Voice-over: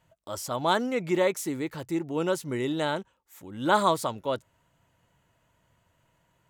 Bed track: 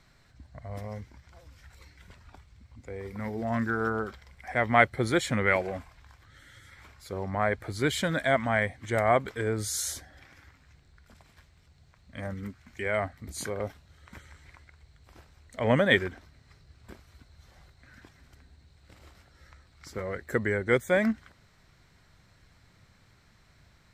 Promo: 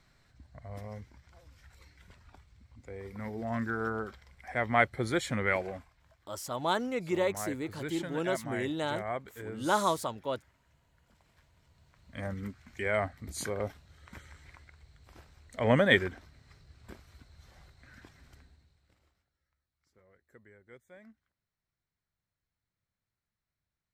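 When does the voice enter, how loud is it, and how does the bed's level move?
6.00 s, −5.0 dB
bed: 0:05.69 −4.5 dB
0:05.96 −12.5 dB
0:11.02 −12.5 dB
0:12.19 −1 dB
0:18.38 −1 dB
0:19.46 −30 dB

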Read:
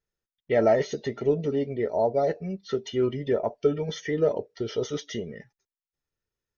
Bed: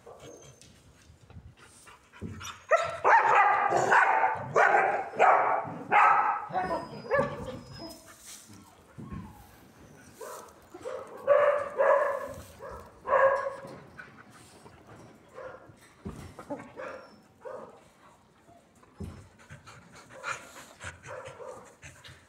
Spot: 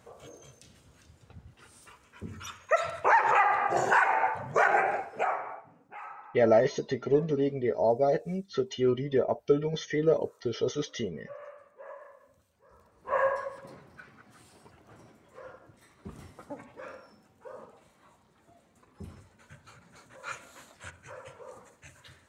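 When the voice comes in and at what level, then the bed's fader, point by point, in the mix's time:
5.85 s, −1.0 dB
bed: 0:04.98 −1.5 dB
0:05.87 −23 dB
0:12.52 −23 dB
0:13.14 −4 dB

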